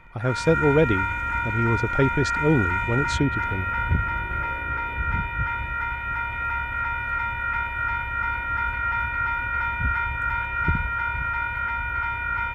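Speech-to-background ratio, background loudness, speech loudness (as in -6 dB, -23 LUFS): 1.0 dB, -25.5 LUFS, -24.5 LUFS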